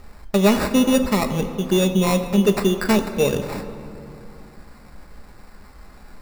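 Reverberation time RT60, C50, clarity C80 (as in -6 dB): 2.9 s, 10.0 dB, 10.5 dB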